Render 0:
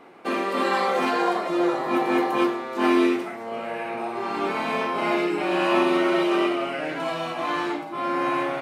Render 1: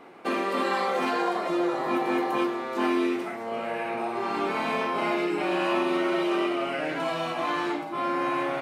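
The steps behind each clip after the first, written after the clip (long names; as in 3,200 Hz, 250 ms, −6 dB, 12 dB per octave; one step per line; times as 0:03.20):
downward compressor 2.5 to 1, threshold −24 dBFS, peak gain reduction 6 dB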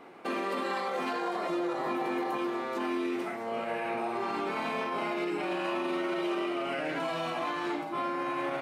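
brickwall limiter −22 dBFS, peak gain reduction 7.5 dB
level −2 dB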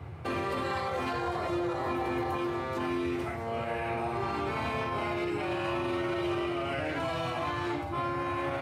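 noise in a band 71–150 Hz −43 dBFS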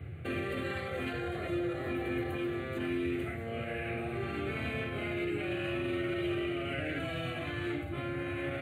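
phaser with its sweep stopped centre 2,300 Hz, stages 4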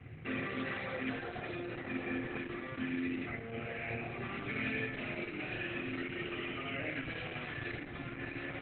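convolution reverb RT60 1.0 s, pre-delay 3 ms, DRR 3.5 dB
Opus 8 kbit/s 48,000 Hz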